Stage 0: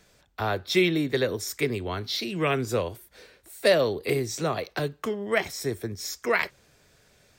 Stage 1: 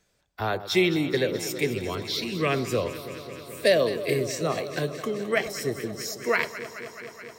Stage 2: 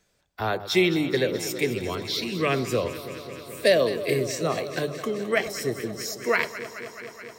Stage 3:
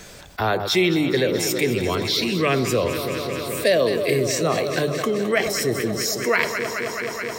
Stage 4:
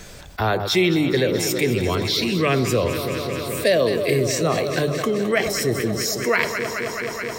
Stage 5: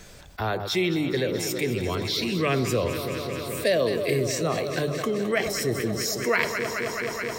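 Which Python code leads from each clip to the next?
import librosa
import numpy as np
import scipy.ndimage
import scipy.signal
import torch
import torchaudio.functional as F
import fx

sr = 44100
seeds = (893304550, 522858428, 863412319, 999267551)

y1 = fx.noise_reduce_blind(x, sr, reduce_db=10)
y1 = fx.echo_alternate(y1, sr, ms=107, hz=1100.0, feedback_pct=89, wet_db=-12)
y2 = fx.hum_notches(y1, sr, base_hz=50, count=3)
y2 = y2 * librosa.db_to_amplitude(1.0)
y3 = fx.env_flatten(y2, sr, amount_pct=50)
y4 = fx.low_shelf(y3, sr, hz=100.0, db=8.5)
y5 = fx.rider(y4, sr, range_db=4, speed_s=2.0)
y5 = y5 * librosa.db_to_amplitude(-5.0)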